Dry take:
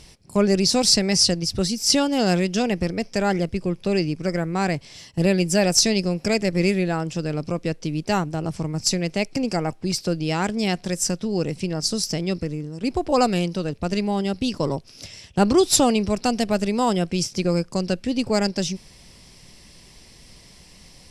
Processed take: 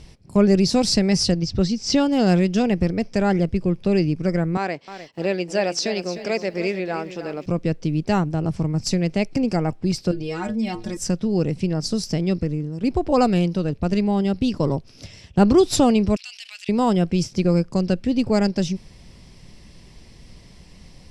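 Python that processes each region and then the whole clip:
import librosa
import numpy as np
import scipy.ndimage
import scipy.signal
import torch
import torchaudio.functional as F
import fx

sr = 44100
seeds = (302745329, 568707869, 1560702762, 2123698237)

y = fx.chain(x, sr, fx.lowpass(hz=6800.0, slope=24),
    fx.quant_float(bits=6), at=(1.32, 2.0))
y = fx.chain(y, sr, fx.bandpass_edges(low_hz=410.0, high_hz=5500.0),
    fx.echo_crushed(ms=305, feedback_pct=35, bits=8, wet_db=-11.5), at=(4.57, 7.46))
y = fx.chain(y, sr, fx.stiff_resonator(f0_hz=110.0, decay_s=0.21, stiffness=0.008),
    fx.env_flatten(amount_pct=50), at=(10.11, 10.97))
y = fx.chain(y, sr, fx.ladder_highpass(hz=2300.0, resonance_pct=45),
    fx.env_flatten(amount_pct=70), at=(16.16, 16.69))
y = fx.lowpass(y, sr, hz=4000.0, slope=6)
y = fx.low_shelf(y, sr, hz=330.0, db=7.0)
y = F.gain(torch.from_numpy(y), -1.0).numpy()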